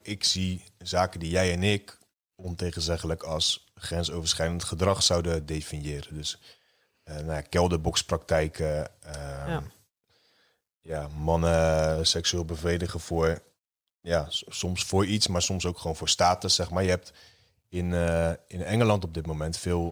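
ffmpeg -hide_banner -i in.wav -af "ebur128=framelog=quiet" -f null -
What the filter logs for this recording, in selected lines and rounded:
Integrated loudness:
  I:         -27.3 LUFS
  Threshold: -38.0 LUFS
Loudness range:
  LRA:         3.8 LU
  Threshold: -48.1 LUFS
  LRA low:   -30.0 LUFS
  LRA high:  -26.2 LUFS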